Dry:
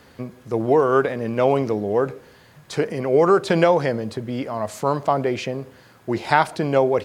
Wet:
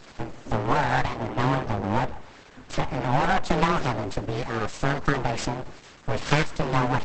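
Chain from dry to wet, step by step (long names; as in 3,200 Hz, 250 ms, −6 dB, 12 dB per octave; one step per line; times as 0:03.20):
0:01.10–0:03.67: high-shelf EQ 3,400 Hz → 5,400 Hz −10.5 dB
downward compressor 1.5 to 1, threshold −33 dBFS, peak gain reduction 8 dB
frequency shifter −22 Hz
full-wave rectification
level +7.5 dB
Opus 10 kbit/s 48,000 Hz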